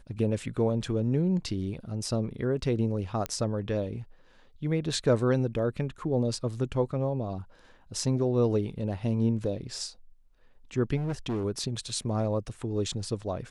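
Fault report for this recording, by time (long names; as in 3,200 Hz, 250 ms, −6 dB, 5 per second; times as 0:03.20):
0:03.26: click −15 dBFS
0:10.96–0:11.44: clipping −27 dBFS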